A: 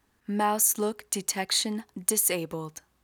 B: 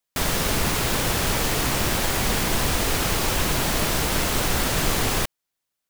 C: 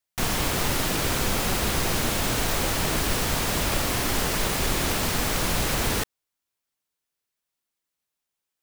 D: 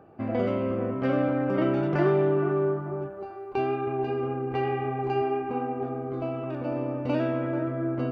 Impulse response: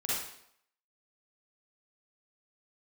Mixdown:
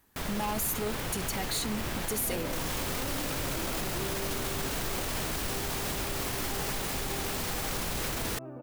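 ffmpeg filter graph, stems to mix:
-filter_complex "[0:a]equalizer=frequency=14000:width_type=o:width=0.63:gain=11.5,asoftclip=type=tanh:threshold=-27.5dB,volume=1dB[link_01];[1:a]bass=frequency=250:gain=1,treble=frequency=4000:gain=-5,volume=-10.5dB[link_02];[2:a]adelay=2350,volume=-3.5dB[link_03];[3:a]lowpass=1400,adelay=1950,volume=-10dB[link_04];[link_01][link_02][link_03][link_04]amix=inputs=4:normalize=0,highshelf=frequency=11000:gain=3.5,alimiter=limit=-23.5dB:level=0:latency=1:release=34"

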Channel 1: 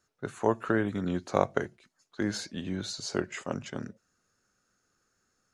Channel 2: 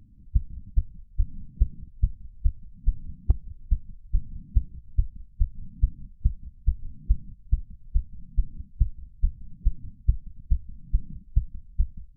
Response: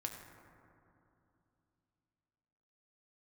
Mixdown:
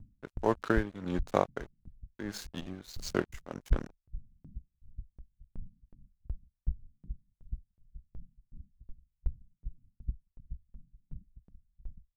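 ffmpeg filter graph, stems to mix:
-filter_complex "[0:a]aeval=exprs='sgn(val(0))*max(abs(val(0))-0.0112,0)':channel_layout=same,volume=2dB[link_01];[1:a]acontrast=29,asoftclip=type=tanh:threshold=-9dB,aeval=exprs='val(0)*pow(10,-39*if(lt(mod(2.7*n/s,1),2*abs(2.7)/1000),1-mod(2.7*n/s,1)/(2*abs(2.7)/1000),(mod(2.7*n/s,1)-2*abs(2.7)/1000)/(1-2*abs(2.7)/1000))/20)':channel_layout=same,volume=-3dB[link_02];[link_01][link_02]amix=inputs=2:normalize=0,tremolo=f=1.6:d=0.74"

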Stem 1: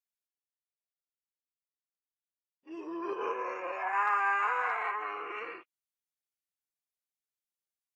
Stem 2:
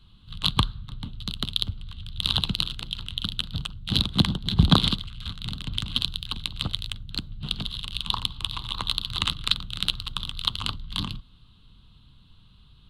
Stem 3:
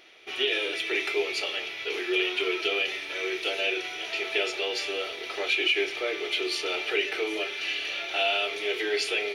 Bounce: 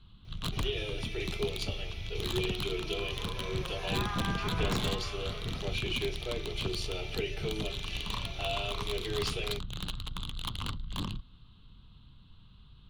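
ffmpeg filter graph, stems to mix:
ffmpeg -i stem1.wav -i stem2.wav -i stem3.wav -filter_complex "[0:a]volume=-10dB[link_01];[1:a]aemphasis=mode=reproduction:type=50fm,aeval=exprs='(tanh(28.2*val(0)+0.4)-tanh(0.4))/28.2':channel_layout=same,volume=0dB[link_02];[2:a]equalizer=frequency=1800:width_type=o:width=1.4:gain=-10.5,adelay=250,volume=-5.5dB[link_03];[link_01][link_02][link_03]amix=inputs=3:normalize=0" out.wav

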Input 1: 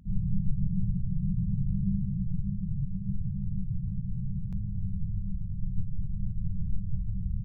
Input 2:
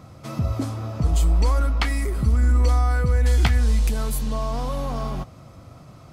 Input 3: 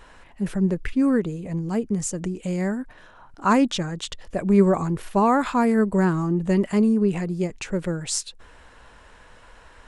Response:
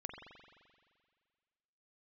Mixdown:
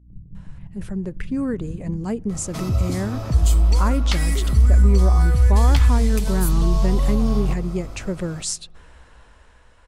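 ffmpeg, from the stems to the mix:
-filter_complex "[0:a]agate=range=-12dB:threshold=-26dB:ratio=16:detection=peak,aeval=exprs='val(0)+0.00794*(sin(2*PI*60*n/s)+sin(2*PI*2*60*n/s)/2+sin(2*PI*3*60*n/s)/3+sin(2*PI*4*60*n/s)/4+sin(2*PI*5*60*n/s)/5)':channel_layout=same,volume=-11dB[link_01];[1:a]acrossover=split=150|3000[link_02][link_03][link_04];[link_03]acompressor=threshold=-37dB:ratio=2.5[link_05];[link_02][link_05][link_04]amix=inputs=3:normalize=0,adelay=2300,volume=-3.5dB,asplit=2[link_06][link_07];[link_07]volume=-5.5dB[link_08];[2:a]lowshelf=frequency=190:gain=10,adelay=350,volume=-8.5dB,asplit=2[link_09][link_10];[link_10]volume=-22.5dB[link_11];[link_06][link_09]amix=inputs=2:normalize=0,bass=frequency=250:gain=-5,treble=frequency=4000:gain=2,acompressor=threshold=-27dB:ratio=4,volume=0dB[link_12];[3:a]atrim=start_sample=2205[link_13];[link_08][link_11]amix=inputs=2:normalize=0[link_14];[link_14][link_13]afir=irnorm=-1:irlink=0[link_15];[link_01][link_12][link_15]amix=inputs=3:normalize=0,equalizer=frequency=64:width=2.9:gain=7,dynaudnorm=framelen=140:gausssize=17:maxgain=7dB"

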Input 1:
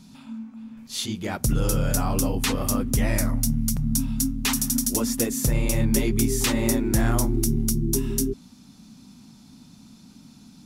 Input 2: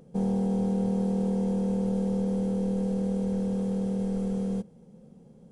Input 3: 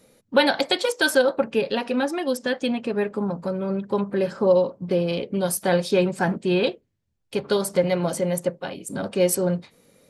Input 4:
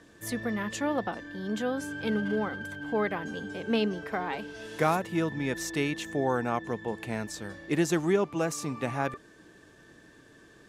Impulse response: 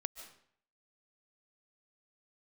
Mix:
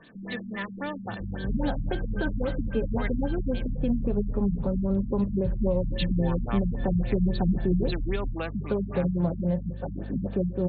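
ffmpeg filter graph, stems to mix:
-filter_complex "[0:a]asubboost=boost=6:cutoff=140,alimiter=limit=-13.5dB:level=0:latency=1,volume=-10.5dB[link_01];[1:a]volume=-12.5dB[link_02];[2:a]aeval=exprs='val(0)+0.0126*(sin(2*PI*50*n/s)+sin(2*PI*2*50*n/s)/2+sin(2*PI*3*50*n/s)/3+sin(2*PI*4*50*n/s)/4+sin(2*PI*5*50*n/s)/5)':channel_layout=same,lowpass=1000,adelay=1200,volume=0.5dB,asplit=2[link_03][link_04];[link_04]volume=-5dB[link_05];[3:a]aemphasis=mode=production:type=riaa,volume=3dB,asplit=3[link_06][link_07][link_08];[link_06]atrim=end=3.71,asetpts=PTS-STARTPTS,afade=type=out:start_time=3.706:duration=0.004:curve=hsin[link_09];[link_07]atrim=start=3.71:end=5.9,asetpts=PTS-STARTPTS,volume=0[link_10];[link_08]atrim=start=5.9,asetpts=PTS-STARTPTS,afade=type=in:duration=0.004:curve=hsin[link_11];[link_09][link_10][link_11]concat=n=3:v=0:a=1[link_12];[4:a]atrim=start_sample=2205[link_13];[link_05][link_13]afir=irnorm=-1:irlink=0[link_14];[link_01][link_02][link_03][link_12][link_14]amix=inputs=5:normalize=0,acrossover=split=210|3000[link_15][link_16][link_17];[link_16]acompressor=threshold=-32dB:ratio=3[link_18];[link_15][link_18][link_17]amix=inputs=3:normalize=0,afftfilt=real='re*lt(b*sr/1024,220*pow(4600/220,0.5+0.5*sin(2*PI*3.7*pts/sr)))':imag='im*lt(b*sr/1024,220*pow(4600/220,0.5+0.5*sin(2*PI*3.7*pts/sr)))':win_size=1024:overlap=0.75"

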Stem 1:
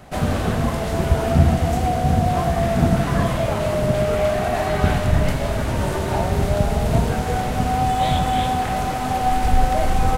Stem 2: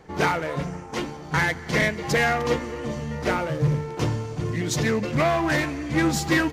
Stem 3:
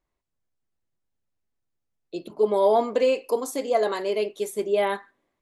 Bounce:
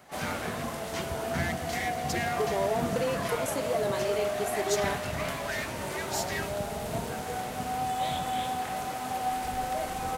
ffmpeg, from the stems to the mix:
ffmpeg -i stem1.wav -i stem2.wav -i stem3.wav -filter_complex "[0:a]highpass=frequency=310:poles=1,volume=-9.5dB[link_01];[1:a]alimiter=limit=-17.5dB:level=0:latency=1,highpass=1200,volume=-5.5dB[link_02];[2:a]acompressor=threshold=-21dB:ratio=6,volume=-5.5dB[link_03];[link_01][link_02][link_03]amix=inputs=3:normalize=0,highshelf=frequency=7600:gain=7" out.wav

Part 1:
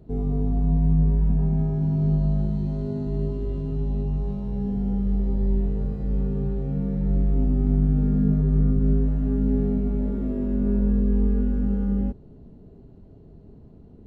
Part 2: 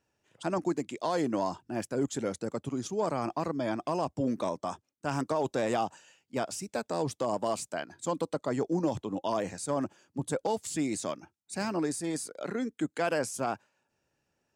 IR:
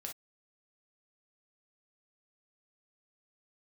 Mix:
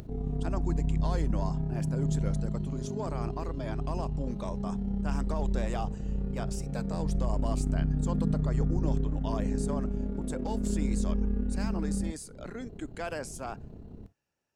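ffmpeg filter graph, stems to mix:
-filter_complex "[0:a]acompressor=mode=upward:threshold=-27dB:ratio=2.5,tremolo=f=33:d=0.571,volume=-5.5dB,asplit=2[link_01][link_02];[link_02]volume=-6dB[link_03];[1:a]volume=-6dB,asplit=2[link_04][link_05];[link_05]volume=-18.5dB[link_06];[2:a]atrim=start_sample=2205[link_07];[link_03][link_06]amix=inputs=2:normalize=0[link_08];[link_08][link_07]afir=irnorm=-1:irlink=0[link_09];[link_01][link_04][link_09]amix=inputs=3:normalize=0,equalizer=frequency=290:width=0.42:gain=-2.5"

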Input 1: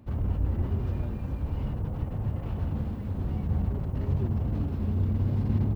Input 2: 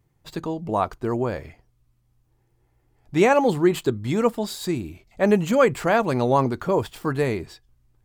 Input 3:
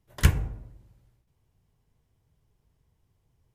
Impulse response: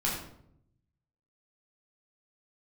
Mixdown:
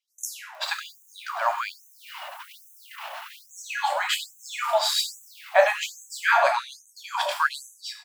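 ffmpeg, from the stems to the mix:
-filter_complex "[0:a]tiltshelf=frequency=880:gain=-8,adelay=550,volume=-3dB[link_01];[1:a]adelay=350,volume=-1.5dB,asplit=2[link_02][link_03];[link_03]volume=-10dB[link_04];[2:a]alimiter=limit=-15.5dB:level=0:latency=1:release=128,volume=0.5dB,asplit=2[link_05][link_06];[link_06]volume=-12dB[link_07];[link_02][link_05]amix=inputs=2:normalize=0,highpass=220,lowpass=6000,alimiter=limit=-18dB:level=0:latency=1,volume=0dB[link_08];[3:a]atrim=start_sample=2205[link_09];[link_04][link_07]amix=inputs=2:normalize=0[link_10];[link_10][link_09]afir=irnorm=-1:irlink=0[link_11];[link_01][link_08][link_11]amix=inputs=3:normalize=0,dynaudnorm=framelen=130:gausssize=3:maxgain=14dB,afftfilt=real='re*gte(b*sr/1024,540*pow(6000/540,0.5+0.5*sin(2*PI*1.2*pts/sr)))':imag='im*gte(b*sr/1024,540*pow(6000/540,0.5+0.5*sin(2*PI*1.2*pts/sr)))':win_size=1024:overlap=0.75"

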